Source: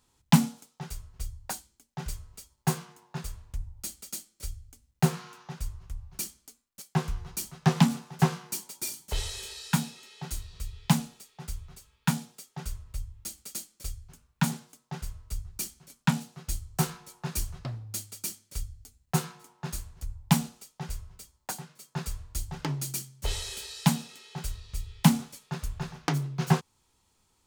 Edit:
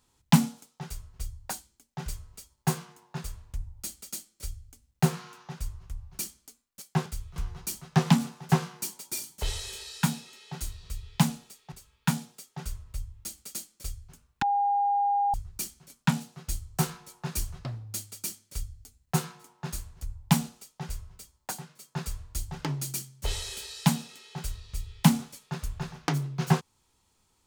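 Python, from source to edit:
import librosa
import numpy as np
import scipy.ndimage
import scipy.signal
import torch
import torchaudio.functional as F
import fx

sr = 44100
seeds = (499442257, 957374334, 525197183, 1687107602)

y = fx.edit(x, sr, fx.move(start_s=11.42, length_s=0.3, to_s=7.06),
    fx.bleep(start_s=14.42, length_s=0.92, hz=809.0, db=-22.0), tone=tone)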